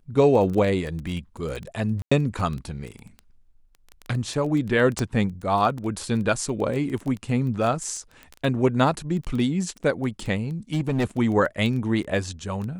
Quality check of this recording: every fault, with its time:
crackle 11/s -28 dBFS
2.02–2.12 gap 95 ms
4.99 pop -12 dBFS
10.73–11.05 clipped -18.5 dBFS

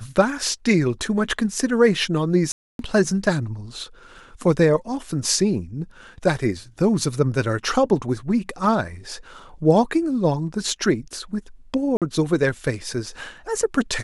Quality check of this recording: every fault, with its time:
2.52–2.79 gap 0.272 s
11.97–12.02 gap 47 ms

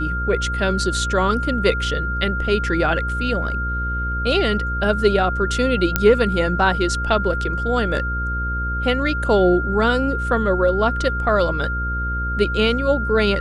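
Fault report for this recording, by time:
buzz 60 Hz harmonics 9 -25 dBFS
tone 1400 Hz -24 dBFS
5.96 pop -1 dBFS

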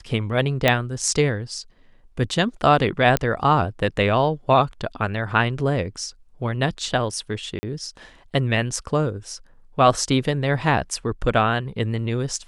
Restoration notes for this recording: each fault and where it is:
0.68 pop -3 dBFS
3.17 pop -5 dBFS
7.59–7.63 gap 40 ms

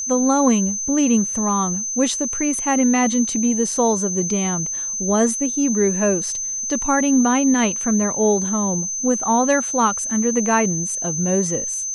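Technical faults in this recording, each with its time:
tone 6200 Hz -23 dBFS

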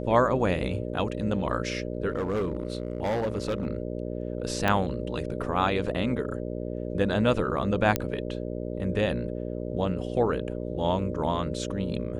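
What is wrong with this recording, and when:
buzz 60 Hz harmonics 10 -33 dBFS
2.1–3.67 clipped -23.5 dBFS
4.68 pop -11 dBFS
7.96 pop -9 dBFS

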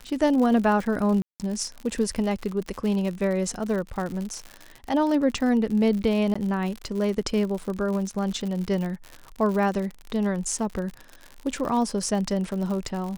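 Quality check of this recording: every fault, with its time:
crackle 84/s -30 dBFS
1.22–1.4 gap 0.178 s
6.34–6.36 gap 15 ms

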